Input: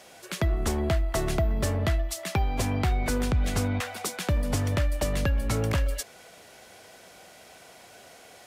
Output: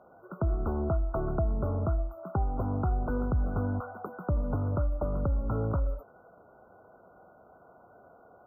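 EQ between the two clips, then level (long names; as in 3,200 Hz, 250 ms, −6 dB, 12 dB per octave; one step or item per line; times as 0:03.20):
linear-phase brick-wall band-stop 1,500–13,000 Hz
high-frequency loss of the air 69 metres
−3.0 dB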